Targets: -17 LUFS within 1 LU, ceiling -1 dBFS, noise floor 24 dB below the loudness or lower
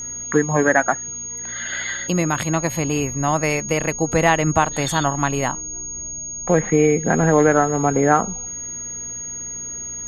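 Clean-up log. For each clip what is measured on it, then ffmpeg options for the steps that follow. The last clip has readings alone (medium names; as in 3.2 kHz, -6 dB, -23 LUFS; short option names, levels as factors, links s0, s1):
hum 60 Hz; highest harmonic 240 Hz; hum level -47 dBFS; steady tone 6.6 kHz; tone level -28 dBFS; loudness -20.0 LUFS; peak level -2.0 dBFS; loudness target -17.0 LUFS
-> -af "bandreject=f=60:t=h:w=4,bandreject=f=120:t=h:w=4,bandreject=f=180:t=h:w=4,bandreject=f=240:t=h:w=4"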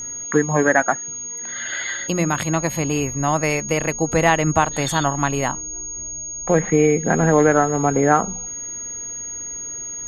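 hum not found; steady tone 6.6 kHz; tone level -28 dBFS
-> -af "bandreject=f=6600:w=30"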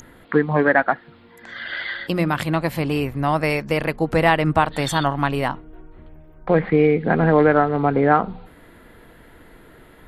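steady tone not found; loudness -20.0 LUFS; peak level -2.0 dBFS; loudness target -17.0 LUFS
-> -af "volume=1.41,alimiter=limit=0.891:level=0:latency=1"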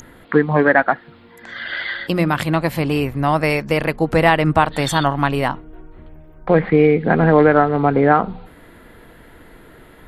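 loudness -17.0 LUFS; peak level -1.0 dBFS; noise floor -45 dBFS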